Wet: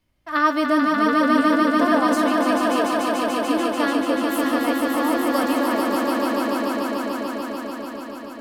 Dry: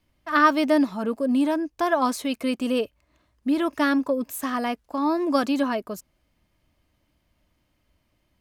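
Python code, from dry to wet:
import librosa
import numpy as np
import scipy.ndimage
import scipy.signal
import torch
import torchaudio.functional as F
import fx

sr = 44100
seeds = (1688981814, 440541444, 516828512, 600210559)

y = fx.doubler(x, sr, ms=19.0, db=-12.5)
y = fx.echo_swell(y, sr, ms=146, loudest=5, wet_db=-4)
y = y * librosa.db_to_amplitude(-1.5)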